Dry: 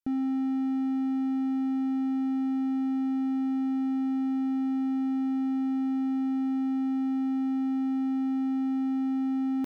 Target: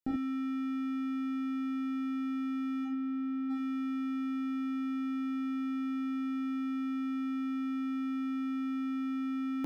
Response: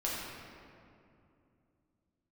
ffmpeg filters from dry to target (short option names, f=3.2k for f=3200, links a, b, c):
-filter_complex "[0:a]asplit=3[a][b][c];[a]afade=t=out:st=2.84:d=0.02[d];[b]lowpass=f=1.3k:p=1,afade=t=in:st=2.84:d=0.02,afade=t=out:st=3.49:d=0.02[e];[c]afade=t=in:st=3.49:d=0.02[f];[d][e][f]amix=inputs=3:normalize=0[g];[1:a]atrim=start_sample=2205,atrim=end_sample=4410[h];[g][h]afir=irnorm=-1:irlink=0"